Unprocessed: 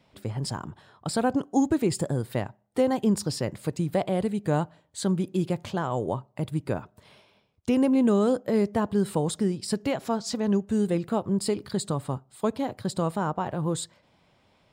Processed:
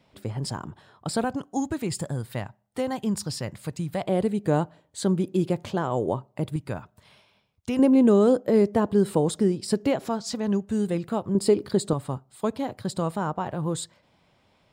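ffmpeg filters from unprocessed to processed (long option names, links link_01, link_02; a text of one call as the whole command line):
ffmpeg -i in.wav -af "asetnsamples=nb_out_samples=441:pad=0,asendcmd='1.24 equalizer g -7;4.07 equalizer g 4;6.56 equalizer g -6.5;7.79 equalizer g 5.5;10.09 equalizer g -1.5;11.35 equalizer g 8.5;11.93 equalizer g -0.5',equalizer=frequency=380:width_type=o:width=1.6:gain=1" out.wav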